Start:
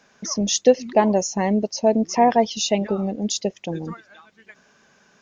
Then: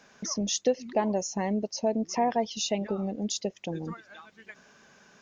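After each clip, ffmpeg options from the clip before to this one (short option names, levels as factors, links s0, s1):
-af "acompressor=threshold=0.01:ratio=1.5"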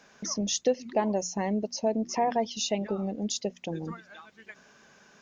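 -af "bandreject=f=60:t=h:w=6,bandreject=f=120:t=h:w=6,bandreject=f=180:t=h:w=6,bandreject=f=240:t=h:w=6"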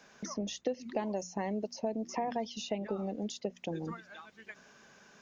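-filter_complex "[0:a]acrossover=split=270|2700[s0][s1][s2];[s0]acompressor=threshold=0.0112:ratio=4[s3];[s1]acompressor=threshold=0.0282:ratio=4[s4];[s2]acompressor=threshold=0.00501:ratio=4[s5];[s3][s4][s5]amix=inputs=3:normalize=0,volume=0.841"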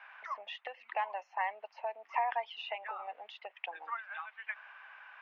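-af "asuperpass=centerf=1500:order=8:qfactor=0.75,volume=2.66"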